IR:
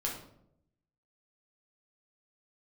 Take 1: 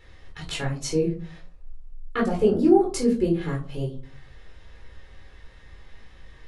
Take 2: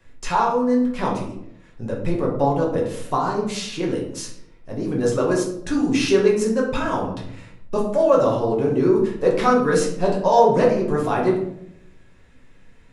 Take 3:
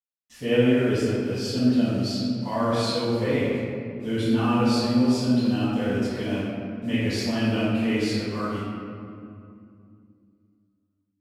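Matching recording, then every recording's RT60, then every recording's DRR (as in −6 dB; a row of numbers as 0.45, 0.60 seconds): 2; 0.45, 0.75, 2.5 seconds; −2.5, −2.5, −15.5 decibels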